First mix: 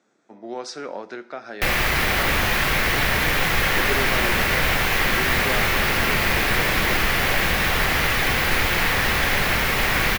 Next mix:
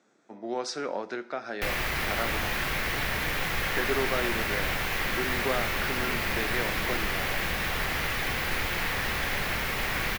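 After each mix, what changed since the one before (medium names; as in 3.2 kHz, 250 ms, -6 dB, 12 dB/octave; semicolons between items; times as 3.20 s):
background -9.0 dB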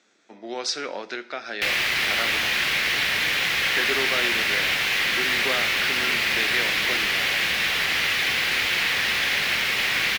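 master: add frequency weighting D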